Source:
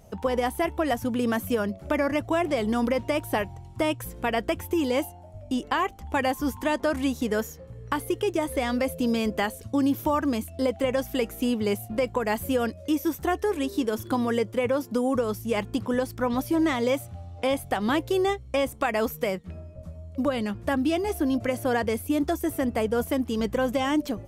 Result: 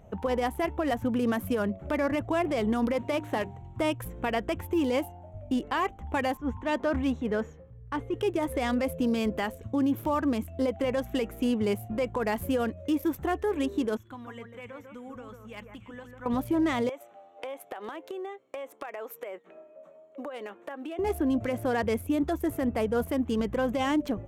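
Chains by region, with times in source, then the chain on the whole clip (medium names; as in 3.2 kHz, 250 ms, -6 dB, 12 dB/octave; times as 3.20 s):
2.93–3.62 s: CVSD coder 64 kbps + high-pass 96 Hz + hum notches 50/100/150/200/250/300/350/400 Hz
6.37–8.14 s: transient shaper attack -4 dB, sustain +2 dB + distance through air 84 m + three bands expanded up and down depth 100%
13.97–16.26 s: amplifier tone stack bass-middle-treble 5-5-5 + echo whose repeats swap between lows and highs 146 ms, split 2 kHz, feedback 51%, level -6 dB
16.89–20.99 s: high-pass 370 Hz 24 dB/octave + compression 12:1, threshold -33 dBFS
whole clip: local Wiener filter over 9 samples; peak limiter -19 dBFS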